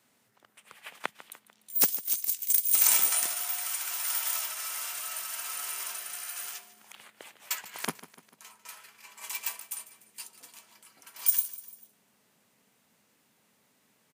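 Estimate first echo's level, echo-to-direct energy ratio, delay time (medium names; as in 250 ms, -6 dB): -17.0 dB, -15.5 dB, 148 ms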